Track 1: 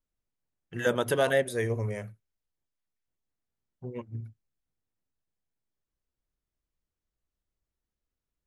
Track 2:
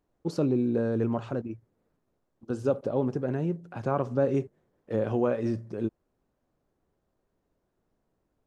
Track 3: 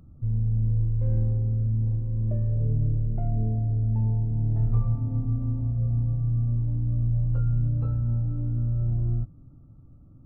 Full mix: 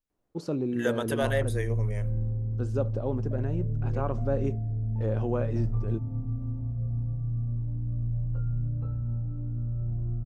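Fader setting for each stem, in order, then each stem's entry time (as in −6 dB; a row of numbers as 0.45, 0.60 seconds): −3.5, −4.0, −5.5 decibels; 0.00, 0.10, 1.00 seconds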